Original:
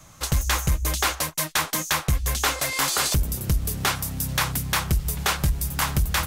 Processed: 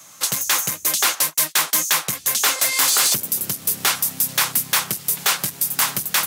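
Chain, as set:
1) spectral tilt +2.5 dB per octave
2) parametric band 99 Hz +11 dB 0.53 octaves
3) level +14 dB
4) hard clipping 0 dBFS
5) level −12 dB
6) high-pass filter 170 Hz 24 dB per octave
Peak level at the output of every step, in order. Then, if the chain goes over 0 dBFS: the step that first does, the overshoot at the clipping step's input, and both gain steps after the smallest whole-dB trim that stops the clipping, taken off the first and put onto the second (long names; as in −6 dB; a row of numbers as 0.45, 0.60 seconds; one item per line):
−5.0, −5.0, +9.0, 0.0, −12.0, −7.0 dBFS
step 3, 9.0 dB
step 3 +5 dB, step 5 −3 dB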